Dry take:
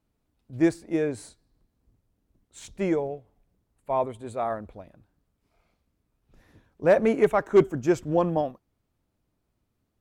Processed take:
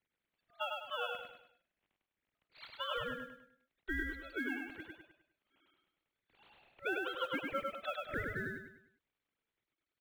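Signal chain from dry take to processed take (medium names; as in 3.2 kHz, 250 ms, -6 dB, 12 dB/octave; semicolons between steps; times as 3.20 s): formants replaced by sine waves; high-pass 1.2 kHz 12 dB/octave; ring modulator 950 Hz; compression 5:1, threshold -48 dBFS, peak gain reduction 18.5 dB; modulation noise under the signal 29 dB; feedback delay 101 ms, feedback 39%, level -3 dB; trim +11.5 dB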